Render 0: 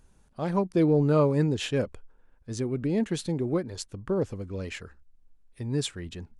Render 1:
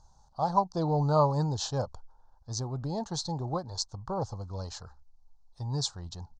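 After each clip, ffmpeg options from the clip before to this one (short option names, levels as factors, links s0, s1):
-af "firequalizer=gain_entry='entry(130,0);entry(220,-11);entry(390,-12);entry(820,12);entry(2200,-27);entry(4200,7);entry(6400,6);entry(11000,-27)':delay=0.05:min_phase=1"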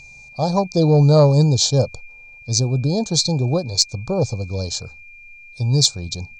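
-af "aeval=exprs='val(0)+0.00562*sin(2*PI*2400*n/s)':c=same,equalizer=f=125:t=o:w=1:g=8,equalizer=f=250:t=o:w=1:g=5,equalizer=f=500:t=o:w=1:g=9,equalizer=f=1000:t=o:w=1:g=-8,equalizer=f=2000:t=o:w=1:g=-7,equalizer=f=4000:t=o:w=1:g=10,equalizer=f=8000:t=o:w=1:g=11,asoftclip=type=tanh:threshold=0.501,volume=2.11"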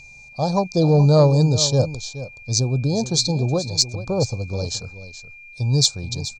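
-af "aecho=1:1:425:0.211,volume=0.841"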